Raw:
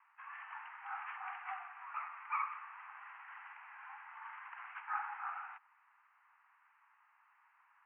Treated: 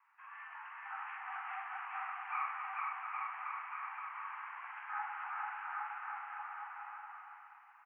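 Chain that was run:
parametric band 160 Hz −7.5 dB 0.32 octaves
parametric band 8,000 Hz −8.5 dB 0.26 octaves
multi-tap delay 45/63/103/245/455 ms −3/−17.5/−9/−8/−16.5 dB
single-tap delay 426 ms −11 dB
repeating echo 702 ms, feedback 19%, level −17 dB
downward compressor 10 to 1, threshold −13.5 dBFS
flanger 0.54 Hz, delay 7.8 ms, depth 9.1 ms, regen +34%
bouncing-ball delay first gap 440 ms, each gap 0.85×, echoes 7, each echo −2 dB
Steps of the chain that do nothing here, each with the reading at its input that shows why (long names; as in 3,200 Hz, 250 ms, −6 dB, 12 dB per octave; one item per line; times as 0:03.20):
parametric band 160 Hz: nothing at its input below 680 Hz
parametric band 8,000 Hz: nothing at its input above 2,900 Hz
downward compressor, threshold −13.5 dBFS: peak of its input −24.5 dBFS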